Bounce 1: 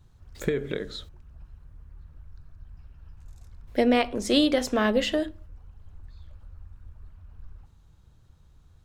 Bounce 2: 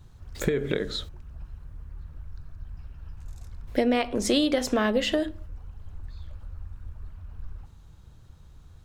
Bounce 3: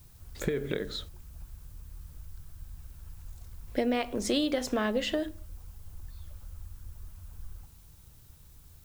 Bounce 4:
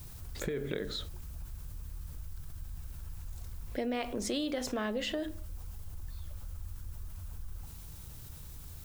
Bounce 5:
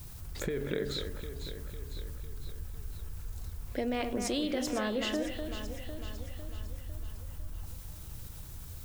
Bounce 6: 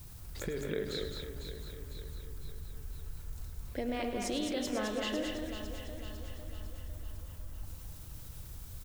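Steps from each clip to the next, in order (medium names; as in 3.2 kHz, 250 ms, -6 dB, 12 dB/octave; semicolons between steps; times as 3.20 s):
compression 3:1, threshold -28 dBFS, peak gain reduction 9 dB; trim +6 dB
added noise blue -56 dBFS; trim -5 dB
level flattener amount 50%; trim -7 dB
echo whose repeats swap between lows and highs 251 ms, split 2.5 kHz, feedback 73%, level -6 dB; trim +1 dB
loudspeakers at several distances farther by 36 m -11 dB, 73 m -5 dB; trim -3.5 dB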